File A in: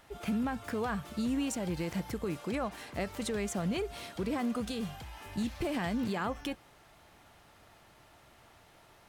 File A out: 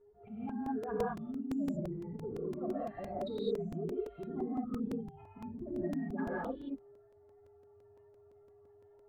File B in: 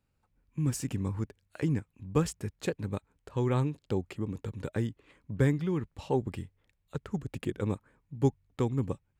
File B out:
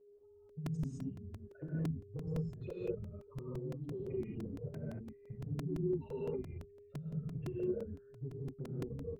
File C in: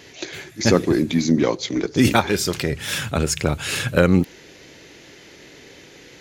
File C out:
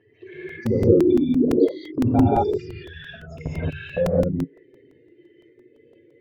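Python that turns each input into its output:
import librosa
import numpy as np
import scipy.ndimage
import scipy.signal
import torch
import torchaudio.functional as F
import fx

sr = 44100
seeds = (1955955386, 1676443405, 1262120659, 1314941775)

y = fx.spec_expand(x, sr, power=3.6)
y = fx.level_steps(y, sr, step_db=19)
y = fx.peak_eq(y, sr, hz=190.0, db=-9.5, octaves=0.21)
y = y + 10.0 ** (-60.0 / 20.0) * np.sin(2.0 * np.pi * 410.0 * np.arange(len(y)) / sr)
y = fx.env_flanger(y, sr, rest_ms=10.0, full_db=-23.0)
y = fx.air_absorb(y, sr, metres=320.0)
y = fx.rev_gated(y, sr, seeds[0], gate_ms=240, shape='rising', drr_db=-7.5)
y = fx.buffer_crackle(y, sr, first_s=0.49, period_s=0.17, block=128, kind='repeat')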